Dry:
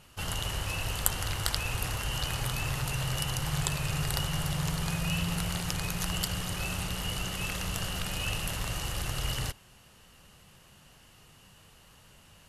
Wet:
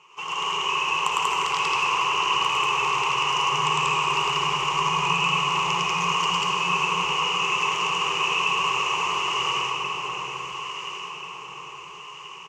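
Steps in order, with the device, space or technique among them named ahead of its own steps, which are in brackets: station announcement (band-pass 470–4200 Hz; peaking EQ 1.1 kHz +10 dB 0.26 oct; loudspeakers at several distances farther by 36 m -1 dB, 65 m 0 dB; reverberation RT60 4.6 s, pre-delay 51 ms, DRR 1 dB); rippled EQ curve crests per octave 0.74, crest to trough 17 dB; echo whose repeats swap between lows and highs 692 ms, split 1.3 kHz, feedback 64%, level -4.5 dB

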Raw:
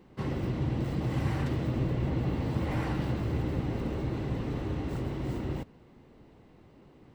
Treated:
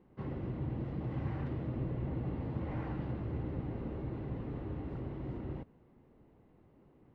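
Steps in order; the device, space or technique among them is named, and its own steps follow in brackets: phone in a pocket (low-pass 3.5 kHz 12 dB/octave; treble shelf 2.4 kHz -11 dB); trim -7 dB

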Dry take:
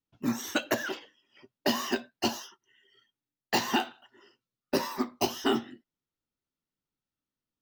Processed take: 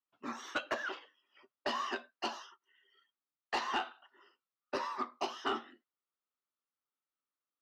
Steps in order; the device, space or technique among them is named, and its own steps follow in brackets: intercom (band-pass 430–4000 Hz; peaking EQ 1.2 kHz +9 dB 0.46 oct; saturation -19 dBFS, distortion -17 dB); trim -5.5 dB

